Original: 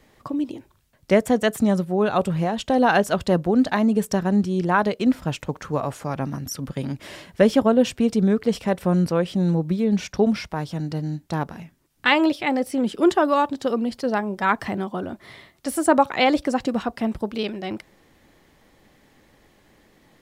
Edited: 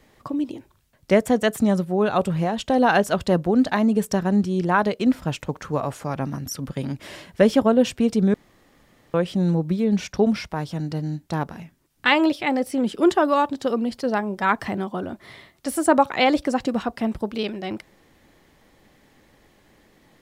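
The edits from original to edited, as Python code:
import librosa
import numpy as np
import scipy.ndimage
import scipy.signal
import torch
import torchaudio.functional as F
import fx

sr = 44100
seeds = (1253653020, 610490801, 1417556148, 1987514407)

y = fx.edit(x, sr, fx.room_tone_fill(start_s=8.34, length_s=0.8), tone=tone)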